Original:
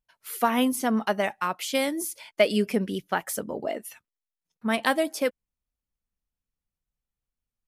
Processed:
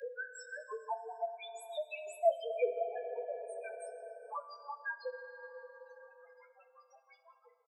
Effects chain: tape start at the beginning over 1.06 s; Doppler pass-by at 2.44, 37 m/s, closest 5 m; steep high-pass 470 Hz 48 dB/oct; reverb removal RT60 0.52 s; LPF 7600 Hz 12 dB/oct; in parallel at +3 dB: upward compressor, threshold -39 dBFS; on the sum: vibrato 11 Hz 28 cents; grains, grains 5.8/s, spray 0.308 s, pitch spread up and down by 0 st; loudest bins only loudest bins 1; doubler 18 ms -8 dB; plate-style reverb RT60 2.6 s, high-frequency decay 0.45×, DRR 8 dB; three-band squash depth 70%; gain +15 dB

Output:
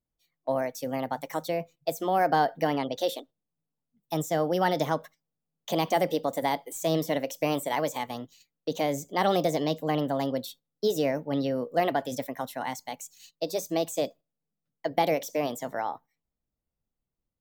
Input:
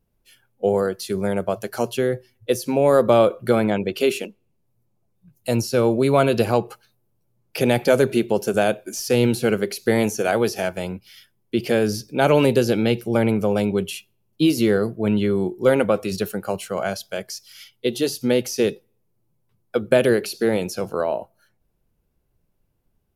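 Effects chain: gate -45 dBFS, range -10 dB; wide varispeed 1.33×; gain -8 dB

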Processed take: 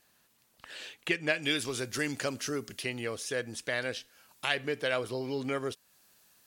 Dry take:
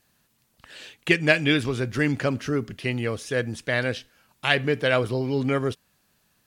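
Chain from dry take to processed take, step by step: tone controls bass -9 dB, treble 0 dB, from 1.42 s treble +14 dB, from 2.82 s treble +6 dB; compressor 1.5:1, threshold -42 dBFS, peak gain reduction 10.5 dB

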